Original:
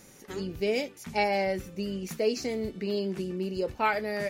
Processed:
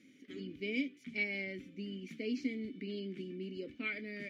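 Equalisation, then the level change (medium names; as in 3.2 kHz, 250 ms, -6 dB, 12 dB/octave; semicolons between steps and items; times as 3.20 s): vowel filter i; +4.5 dB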